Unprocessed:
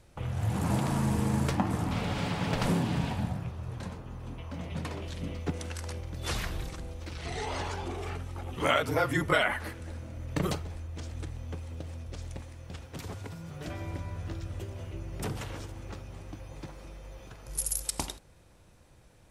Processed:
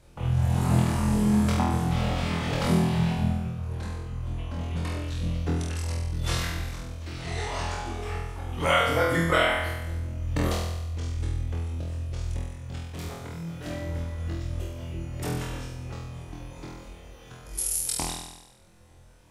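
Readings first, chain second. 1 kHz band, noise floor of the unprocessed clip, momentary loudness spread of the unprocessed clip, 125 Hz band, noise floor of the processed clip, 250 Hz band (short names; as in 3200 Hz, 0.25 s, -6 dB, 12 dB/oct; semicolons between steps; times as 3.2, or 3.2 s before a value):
+4.0 dB, -57 dBFS, 15 LU, +6.0 dB, -52 dBFS, +5.5 dB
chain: reverb removal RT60 0.85 s; on a send: flutter echo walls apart 4.1 m, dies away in 1 s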